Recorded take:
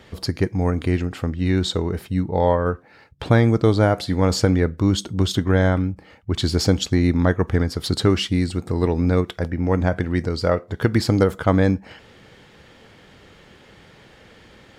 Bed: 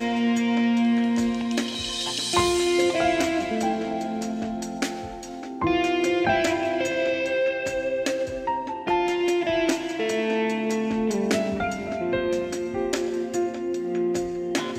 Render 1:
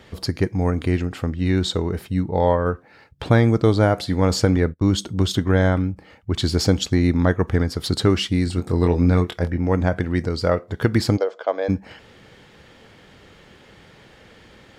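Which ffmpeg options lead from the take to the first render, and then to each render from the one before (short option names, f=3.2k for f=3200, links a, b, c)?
-filter_complex "[0:a]asettb=1/sr,asplit=3[a][b][c];[a]atrim=end=4.564[d];[b]atrim=start=4.56:end=4.99,asetpts=PTS-STARTPTS,afade=t=in:d=0.004:c=qsin,afade=t=out:st=0.426:d=0.004:c=qsin,agate=range=-27dB:threshold=-30dB:ratio=16:release=100:detection=peak[e];[c]atrim=start=4.986[f];[d][e]acrossfade=d=0.004:c1=hsin:c2=qsin[g];[g][f]acrossfade=d=0.004:c1=qsin:c2=hsin,asettb=1/sr,asplit=3[h][i][j];[h]atrim=end=8.444[k];[i]atrim=start=8.44:end=9.58,asetpts=PTS-STARTPTS,afade=t=in:d=0.004:c=qsin,afade=t=out:st=1.136:d=0.004:c=qsin,asplit=2[l][m];[m]adelay=23,volume=-6dB[n];[l][n]amix=inputs=2:normalize=0,atrim=end_sample=50274[o];[j]atrim=start=9.576[p];[k][o]acrossfade=d=0.004:c1=hsin:c2=qsin[q];[q][p]acrossfade=d=0.004:c1=qsin:c2=hsin,asplit=3[r][s][t];[r]afade=t=out:st=11.16:d=0.02[u];[s]highpass=f=480:w=0.5412,highpass=f=480:w=1.3066,equalizer=f=630:t=q:w=4:g=3,equalizer=f=900:t=q:w=4:g=-5,equalizer=f=1.3k:t=q:w=4:g=-9,equalizer=f=1.9k:t=q:w=4:g=-9,equalizer=f=2.7k:t=q:w=4:g=-6,equalizer=f=3.9k:t=q:w=4:g=-7,lowpass=f=4.9k:w=0.5412,lowpass=f=4.9k:w=1.3066,afade=t=in:st=11.16:d=0.02,afade=t=out:st=11.68:d=0.02[v];[t]afade=t=in:st=11.68:d=0.02[w];[u][v][w]amix=inputs=3:normalize=0"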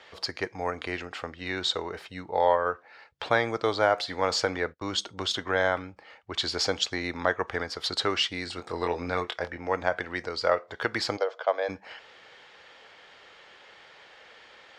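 -filter_complex "[0:a]acrossover=split=510 6700:gain=0.0708 1 0.0891[a][b][c];[a][b][c]amix=inputs=3:normalize=0"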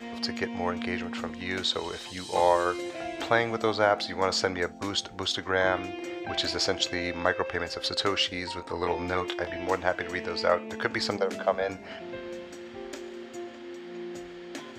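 -filter_complex "[1:a]volume=-14dB[a];[0:a][a]amix=inputs=2:normalize=0"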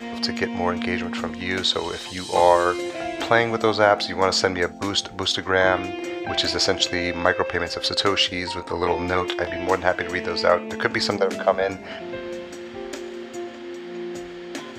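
-af "volume=6.5dB,alimiter=limit=-3dB:level=0:latency=1"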